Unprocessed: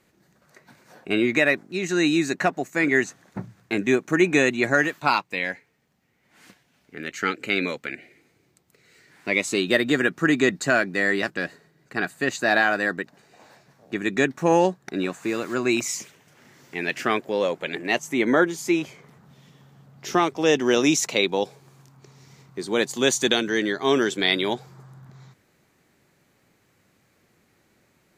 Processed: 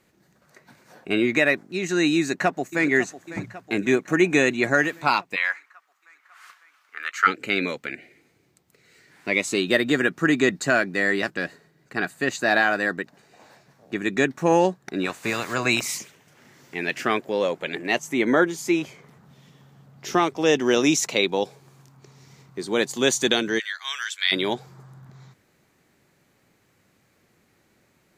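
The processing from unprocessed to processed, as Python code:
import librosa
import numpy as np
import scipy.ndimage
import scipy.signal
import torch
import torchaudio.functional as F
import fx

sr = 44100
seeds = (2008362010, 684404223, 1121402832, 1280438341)

y = fx.echo_throw(x, sr, start_s=2.17, length_s=0.73, ms=550, feedback_pct=65, wet_db=-14.5)
y = fx.highpass_res(y, sr, hz=1200.0, q=5.2, at=(5.35, 7.26), fade=0.02)
y = fx.spec_clip(y, sr, under_db=15, at=(15.04, 15.97), fade=0.02)
y = fx.highpass(y, sr, hz=1400.0, slope=24, at=(23.58, 24.31), fade=0.02)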